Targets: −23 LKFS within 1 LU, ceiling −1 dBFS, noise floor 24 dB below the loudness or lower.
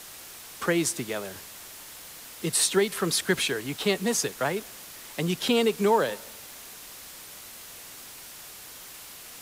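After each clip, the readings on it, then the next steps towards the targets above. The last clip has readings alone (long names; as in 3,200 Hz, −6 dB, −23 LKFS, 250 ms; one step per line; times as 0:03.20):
background noise floor −45 dBFS; target noise floor −51 dBFS; integrated loudness −26.5 LKFS; sample peak −10.5 dBFS; target loudness −23.0 LKFS
→ noise reduction from a noise print 6 dB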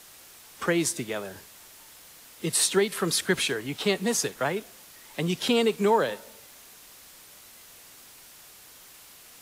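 background noise floor −51 dBFS; integrated loudness −26.0 LKFS; sample peak −10.5 dBFS; target loudness −23.0 LKFS
→ level +3 dB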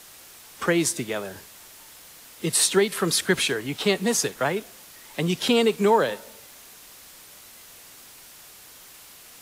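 integrated loudness −23.0 LKFS; sample peak −7.5 dBFS; background noise floor −48 dBFS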